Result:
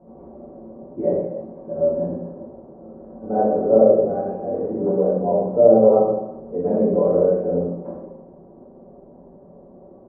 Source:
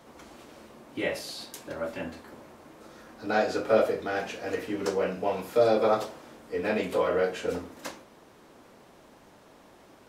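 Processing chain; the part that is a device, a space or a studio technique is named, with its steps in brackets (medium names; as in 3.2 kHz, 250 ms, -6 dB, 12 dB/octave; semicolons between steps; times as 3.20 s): next room (low-pass 680 Hz 24 dB/octave; reverberation RT60 0.95 s, pre-delay 6 ms, DRR -7 dB); comb 5.3 ms, depth 49%; trim +2 dB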